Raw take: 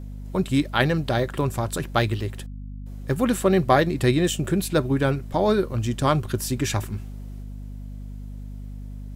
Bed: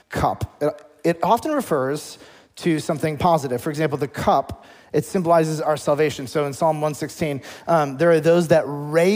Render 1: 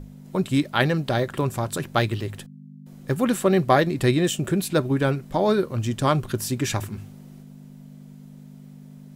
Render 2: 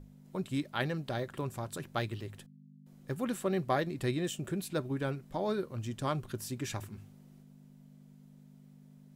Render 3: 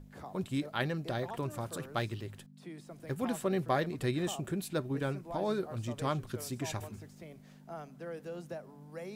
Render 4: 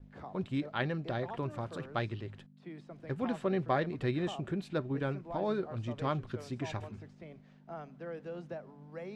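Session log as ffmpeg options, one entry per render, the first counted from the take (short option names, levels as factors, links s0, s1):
-af "bandreject=f=50:t=h:w=6,bandreject=f=100:t=h:w=6"
-af "volume=0.237"
-filter_complex "[1:a]volume=0.0447[s0];[0:a][s0]amix=inputs=2:normalize=0"
-af "lowpass=3400,agate=range=0.0224:threshold=0.00282:ratio=3:detection=peak"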